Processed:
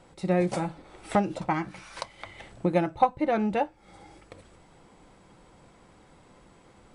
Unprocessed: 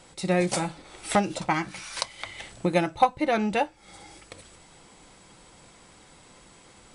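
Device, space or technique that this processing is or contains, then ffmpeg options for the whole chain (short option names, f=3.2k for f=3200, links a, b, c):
through cloth: -af "highshelf=f=2.3k:g=-14"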